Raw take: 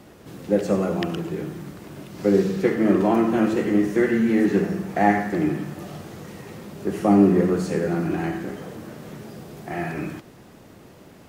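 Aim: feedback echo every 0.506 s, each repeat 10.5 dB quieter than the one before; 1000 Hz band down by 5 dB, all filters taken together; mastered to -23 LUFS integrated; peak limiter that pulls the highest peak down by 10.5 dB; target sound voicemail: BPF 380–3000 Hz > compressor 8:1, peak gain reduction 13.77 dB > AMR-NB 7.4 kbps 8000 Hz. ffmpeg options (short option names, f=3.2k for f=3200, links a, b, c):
-af "equalizer=f=1k:t=o:g=-7.5,alimiter=limit=-15.5dB:level=0:latency=1,highpass=380,lowpass=3k,aecho=1:1:506|1012|1518:0.299|0.0896|0.0269,acompressor=threshold=-37dB:ratio=8,volume=19.5dB" -ar 8000 -c:a libopencore_amrnb -b:a 7400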